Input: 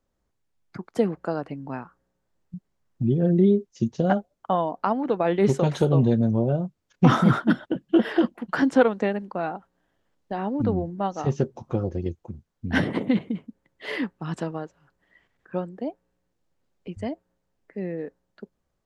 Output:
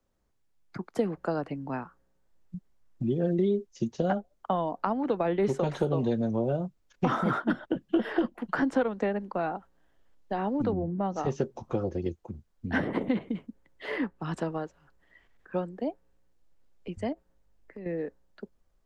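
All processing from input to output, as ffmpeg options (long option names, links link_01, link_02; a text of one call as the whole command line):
ffmpeg -i in.wav -filter_complex "[0:a]asettb=1/sr,asplit=3[link_01][link_02][link_03];[link_01]atrim=end=10.724[link_04];[link_02]atrim=start=10.72:end=11.16,asetpts=PTS-STARTPTS,afade=type=in:duration=0.004:curve=qsin,afade=type=out:start_time=0.436:duration=0.004:curve=qsin,highpass=95,aemphasis=mode=reproduction:type=riaa,acompressor=threshold=-24dB:ratio=2:attack=3.2:release=140:knee=1:detection=peak[link_05];[link_03]atrim=start=11.156[link_06];[link_04][link_05]acrossfade=duration=0.004:curve1=hsin:curve2=qsin[link_07];[link_07][link_06]acrossfade=duration=0.004:curve1=qsin:curve2=hsin,asettb=1/sr,asplit=3[link_08][link_09][link_10];[link_08]atrim=end=17.124[link_11];[link_09]atrim=start=17.12:end=17.86,asetpts=PTS-STARTPTS,afade=type=in:duration=0.004:curve=qsin,afade=type=out:start_time=0.736:duration=0.004:curve=qsin,acompressor=threshold=-37dB:ratio=6:attack=3.2:release=140:knee=1:detection=peak,aeval=exprs='val(0)+0.000112*(sin(2*PI*50*n/s)+sin(2*PI*2*50*n/s)/2+sin(2*PI*3*50*n/s)/3+sin(2*PI*4*50*n/s)/4+sin(2*PI*5*50*n/s)/5)':channel_layout=same[link_12];[link_10]atrim=start=17.856[link_13];[link_11][link_12]acrossfade=duration=0.004:curve1=hsin:curve2=qsin[link_14];[link_14][link_13]acrossfade=duration=0.004:curve1=qsin:curve2=hsin,asubboost=boost=4.5:cutoff=50,acrossover=split=110|300|2000[link_15][link_16][link_17][link_18];[link_15]acompressor=threshold=-46dB:ratio=4[link_19];[link_16]acompressor=threshold=-32dB:ratio=4[link_20];[link_17]acompressor=threshold=-26dB:ratio=4[link_21];[link_18]acompressor=threshold=-49dB:ratio=4[link_22];[link_19][link_20][link_21][link_22]amix=inputs=4:normalize=0" out.wav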